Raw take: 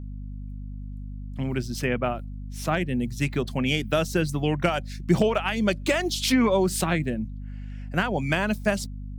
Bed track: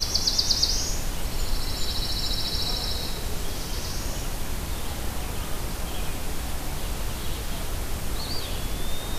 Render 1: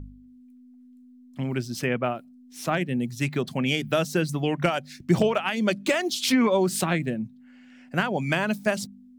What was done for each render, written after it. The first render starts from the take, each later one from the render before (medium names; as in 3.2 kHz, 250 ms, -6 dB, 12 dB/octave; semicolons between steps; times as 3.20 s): de-hum 50 Hz, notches 4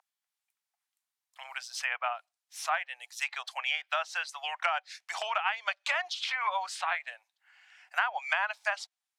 steep high-pass 750 Hz 48 dB/octave; low-pass that closes with the level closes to 2.3 kHz, closed at -25 dBFS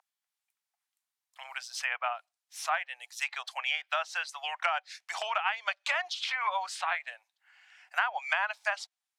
no audible change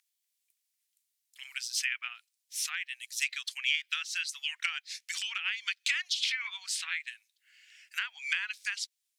inverse Chebyshev high-pass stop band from 330 Hz, stop band 80 dB; treble shelf 3.9 kHz +10 dB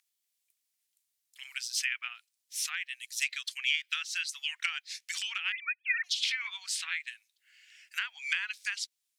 2.88–3.94 s: high-pass 1 kHz 24 dB/octave; 5.52–6.04 s: formants replaced by sine waves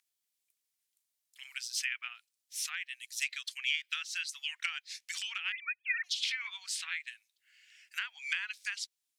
trim -3 dB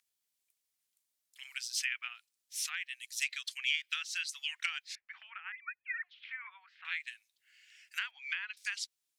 4.95–6.85 s: low-pass 1.8 kHz 24 dB/octave; 8.11–8.57 s: distance through air 240 m